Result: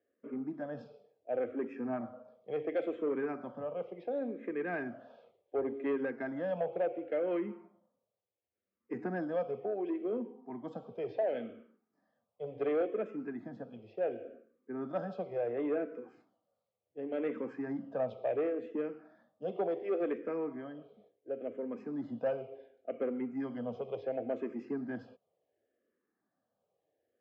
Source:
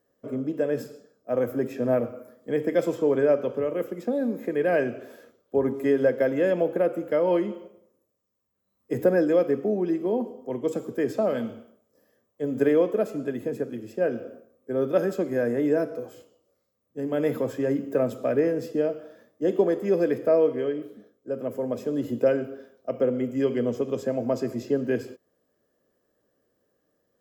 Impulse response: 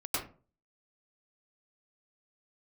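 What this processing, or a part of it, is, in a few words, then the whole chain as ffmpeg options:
barber-pole phaser into a guitar amplifier: -filter_complex "[0:a]asplit=2[link_01][link_02];[link_02]afreqshift=-0.7[link_03];[link_01][link_03]amix=inputs=2:normalize=1,asoftclip=type=tanh:threshold=-18.5dB,highpass=100,equalizer=frequency=130:width_type=q:width=4:gain=-4,equalizer=frequency=750:width_type=q:width=4:gain=8,equalizer=frequency=2300:width_type=q:width=4:gain=3,lowpass=frequency=3700:width=0.5412,lowpass=frequency=3700:width=1.3066,volume=-7.5dB"

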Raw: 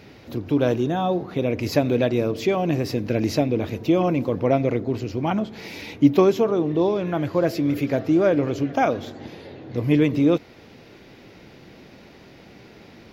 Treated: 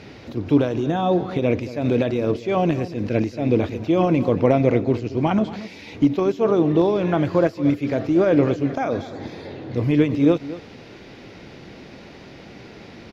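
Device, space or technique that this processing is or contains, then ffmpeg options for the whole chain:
de-esser from a sidechain: -filter_complex "[0:a]asplit=2[link_01][link_02];[link_02]highpass=frequency=5400:width=0.5412,highpass=frequency=5400:width=1.3066,apad=whole_len=578724[link_03];[link_01][link_03]sidechaincompress=threshold=-56dB:ratio=5:attack=1.9:release=71,lowpass=8200,asettb=1/sr,asplit=3[link_04][link_05][link_06];[link_04]atrim=end=8.654[link_07];[link_05]atrim=start=8.65:end=9.51,asetpts=PTS-STARTPTS,afade=type=in:duration=0.004:curve=qsin,afade=type=out:start_time=0.856:duration=0.004:curve=qsin,bandreject=frequency=2900:width=5.4[link_08];[link_06]atrim=start=9.506[link_09];[link_07][link_08]acrossfade=duration=0.004:curve1=hsin:curve2=qsin[link_10];[link_10][link_09]acrossfade=duration=0.004:curve1=qsin:curve2=hsin,aecho=1:1:228:0.168,volume=5dB"

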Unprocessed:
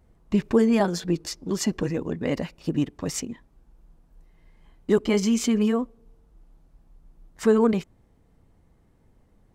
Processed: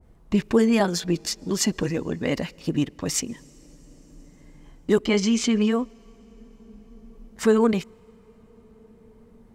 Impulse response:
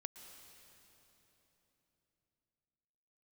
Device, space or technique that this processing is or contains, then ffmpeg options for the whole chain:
ducked reverb: -filter_complex "[0:a]asettb=1/sr,asplit=3[link_01][link_02][link_03];[link_01]atrim=end=5.064[link_04];[link_02]atrim=start=5.06:end=5.72,asetpts=PTS-STARTPTS,afade=type=in:duration=0.004:curve=qsin,afade=type=out:start_time=0.656:duration=0.004:curve=qsin,lowpass=6000[link_05];[link_03]atrim=start=5.716[link_06];[link_04][link_05]acrossfade=duration=0.004:curve1=hsin:curve2=qsin[link_07];[link_07][link_06]acrossfade=duration=0.004:curve1=qsin:curve2=hsin,asplit=3[link_08][link_09][link_10];[1:a]atrim=start_sample=2205[link_11];[link_09][link_11]afir=irnorm=-1:irlink=0[link_12];[link_10]apad=whole_len=421033[link_13];[link_12][link_13]sidechaincompress=threshold=-36dB:ratio=16:attack=16:release=1250,volume=1.5dB[link_14];[link_08][link_14]amix=inputs=2:normalize=0,adynamicequalizer=threshold=0.00891:dfrequency=1600:dqfactor=0.7:tfrequency=1600:tqfactor=0.7:attack=5:release=100:ratio=0.375:range=2.5:mode=boostabove:tftype=highshelf"

